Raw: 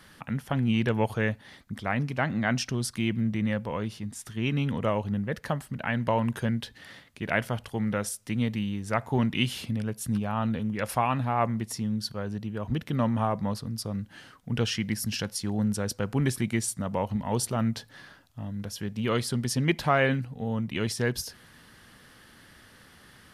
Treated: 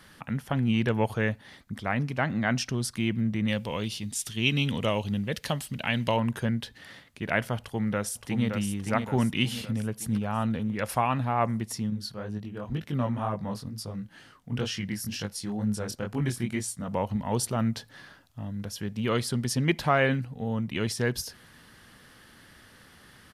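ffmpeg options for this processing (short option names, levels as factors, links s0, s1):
-filter_complex "[0:a]asettb=1/sr,asplit=3[s0][s1][s2];[s0]atrim=end=3.484[s3];[s1]atrim=start=3.48:end=6.17,asetpts=PTS-STARTPTS,afade=t=in:d=0.004:c=qsin,afade=t=out:st=2.686:d=0.004:c=qsin,highshelf=f=2200:t=q:w=1.5:g=9[s4];[s2]atrim=start=6.166[s5];[s3][s4]acrossfade=d=0.004:c1=hsin:c2=qsin[s6];[s6][s5]acrossfade=d=0.004:c1=qsin:c2=hsin,asplit=2[s7][s8];[s8]afade=t=in:st=7.58:d=0.01,afade=t=out:st=8.47:d=0.01,aecho=0:1:570|1140|1710|2280|2850|3420:0.530884|0.265442|0.132721|0.0663606|0.0331803|0.0165901[s9];[s7][s9]amix=inputs=2:normalize=0,asettb=1/sr,asplit=3[s10][s11][s12];[s10]atrim=end=11.904[s13];[s11]atrim=start=11.9:end=16.88,asetpts=PTS-STARTPTS,afade=t=in:d=0.004:c=qsin,afade=t=out:st=4.976:d=0.004:c=qsin,flanger=delay=19:depth=6.2:speed=2.1[s14];[s12]atrim=start=16.876[s15];[s13][s14]acrossfade=d=0.004:c1=hsin:c2=qsin[s16];[s16][s15]acrossfade=d=0.004:c1=qsin:c2=hsin"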